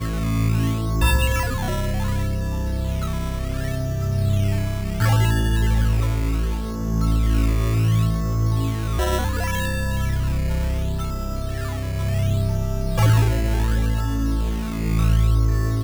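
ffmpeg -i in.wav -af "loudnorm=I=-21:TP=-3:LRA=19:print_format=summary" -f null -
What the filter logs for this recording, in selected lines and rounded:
Input Integrated:    -22.1 LUFS
Input True Peak:      -6.4 dBTP
Input LRA:             3.7 LU
Input Threshold:     -32.1 LUFS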